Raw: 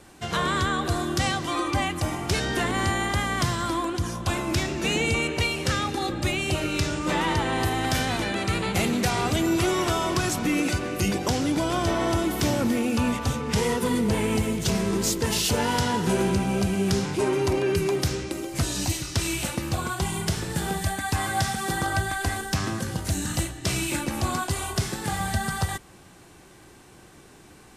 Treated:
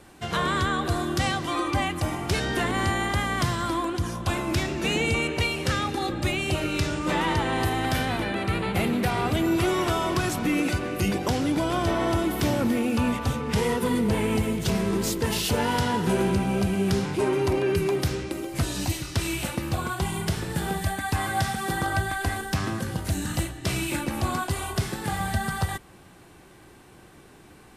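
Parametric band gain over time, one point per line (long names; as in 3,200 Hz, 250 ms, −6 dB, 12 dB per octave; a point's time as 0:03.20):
parametric band 6,500 Hz 1.1 octaves
0:07.70 −4 dB
0:08.26 −13.5 dB
0:09.14 −13.5 dB
0:09.72 −6 dB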